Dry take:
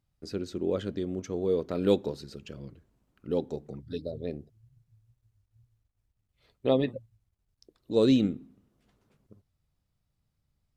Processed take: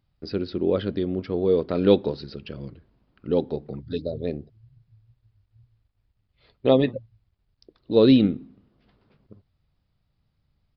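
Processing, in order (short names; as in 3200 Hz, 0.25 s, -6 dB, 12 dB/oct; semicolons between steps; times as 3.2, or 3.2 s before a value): downsampling 11025 Hz; gain +6.5 dB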